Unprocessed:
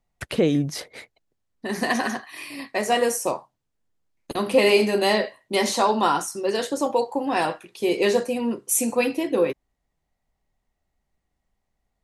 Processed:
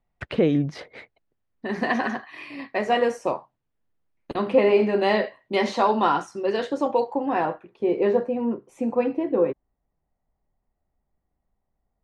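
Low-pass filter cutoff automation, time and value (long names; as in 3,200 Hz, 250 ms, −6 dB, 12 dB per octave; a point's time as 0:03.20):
0:04.44 2,700 Hz
0:04.67 1,400 Hz
0:05.18 2,900 Hz
0:07.10 2,900 Hz
0:07.53 1,200 Hz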